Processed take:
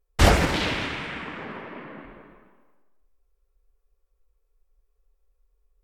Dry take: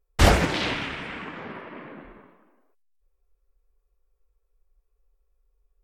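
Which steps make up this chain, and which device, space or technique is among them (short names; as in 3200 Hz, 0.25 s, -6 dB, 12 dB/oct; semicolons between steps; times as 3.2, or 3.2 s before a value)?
saturated reverb return (on a send at -6 dB: reverb RT60 1.0 s, pre-delay 0.114 s + soft clip -19 dBFS, distortion -9 dB)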